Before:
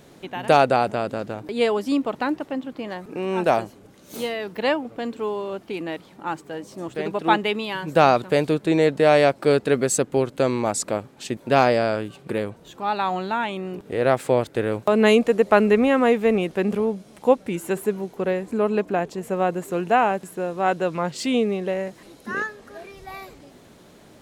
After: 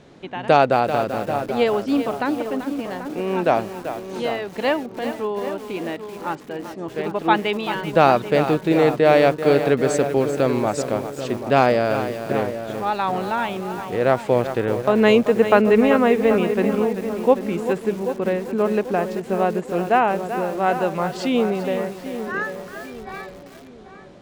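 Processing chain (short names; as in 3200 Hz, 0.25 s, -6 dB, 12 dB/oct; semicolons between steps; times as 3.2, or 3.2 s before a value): air absorption 94 m; darkening echo 0.788 s, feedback 41%, low-pass 1500 Hz, level -10 dB; lo-fi delay 0.387 s, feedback 35%, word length 6-bit, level -10 dB; gain +1.5 dB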